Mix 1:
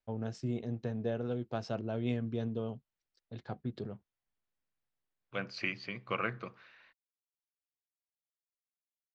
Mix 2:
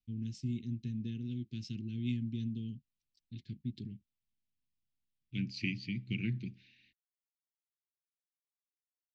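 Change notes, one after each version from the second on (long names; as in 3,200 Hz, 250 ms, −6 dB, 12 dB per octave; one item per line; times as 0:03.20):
second voice: add low-shelf EQ 470 Hz +10 dB
master: add inverse Chebyshev band-stop filter 580–1,200 Hz, stop band 60 dB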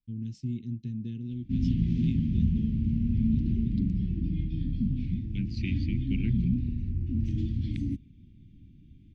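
background: unmuted
master: add tilt shelving filter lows +4 dB, about 720 Hz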